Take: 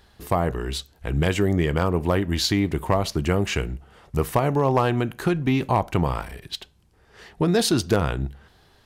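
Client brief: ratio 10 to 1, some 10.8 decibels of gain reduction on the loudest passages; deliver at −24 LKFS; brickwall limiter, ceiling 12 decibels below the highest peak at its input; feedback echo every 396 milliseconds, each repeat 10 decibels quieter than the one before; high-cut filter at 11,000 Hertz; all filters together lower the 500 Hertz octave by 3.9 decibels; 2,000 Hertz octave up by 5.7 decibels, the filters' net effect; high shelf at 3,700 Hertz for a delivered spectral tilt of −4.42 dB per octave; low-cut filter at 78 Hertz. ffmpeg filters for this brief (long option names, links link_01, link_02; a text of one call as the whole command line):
ffmpeg -i in.wav -af "highpass=78,lowpass=11000,equalizer=frequency=500:width_type=o:gain=-5.5,equalizer=frequency=2000:width_type=o:gain=5.5,highshelf=frequency=3700:gain=7.5,acompressor=threshold=-27dB:ratio=10,alimiter=limit=-23.5dB:level=0:latency=1,aecho=1:1:396|792|1188|1584:0.316|0.101|0.0324|0.0104,volume=11dB" out.wav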